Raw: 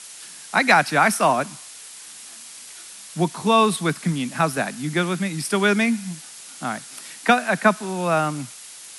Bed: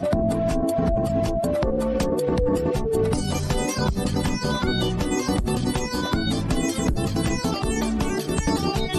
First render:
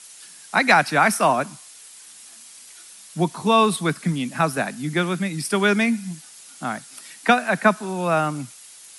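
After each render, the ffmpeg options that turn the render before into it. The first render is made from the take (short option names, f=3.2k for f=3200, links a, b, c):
-af "afftdn=nr=6:nf=-41"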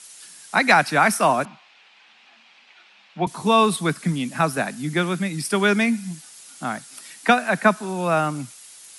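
-filter_complex "[0:a]asettb=1/sr,asplit=3[a][b][c];[a]atrim=end=1.454[d];[b]atrim=start=1.45:end=3.27,asetpts=PTS-STARTPTS,afade=t=in:d=0.004:c=qsin,afade=t=out:st=1.816:d=0.004:c=qsin,highpass=f=190:w=0.5412,highpass=f=190:w=1.3066,equalizer=f=300:t=q:w=4:g=-8,equalizer=f=460:t=q:w=4:g=-4,equalizer=f=810:t=q:w=4:g=6,equalizer=f=2.5k:t=q:w=4:g=6,lowpass=f=3.5k:w=0.5412,lowpass=f=3.5k:w=1.3066[e];[c]atrim=start=3.266[f];[d][e]acrossfade=d=0.004:c1=hsin:c2=qsin[g];[g][f]acrossfade=d=0.004:c1=qsin:c2=hsin"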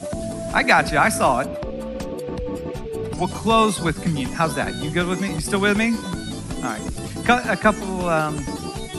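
-filter_complex "[1:a]volume=-6.5dB[a];[0:a][a]amix=inputs=2:normalize=0"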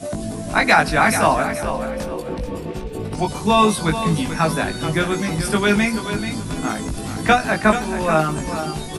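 -filter_complex "[0:a]asplit=2[a][b];[b]adelay=19,volume=-3.5dB[c];[a][c]amix=inputs=2:normalize=0,aecho=1:1:434|868|1302:0.316|0.0949|0.0285"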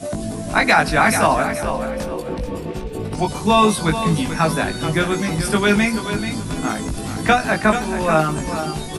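-af "volume=1dB,alimiter=limit=-3dB:level=0:latency=1"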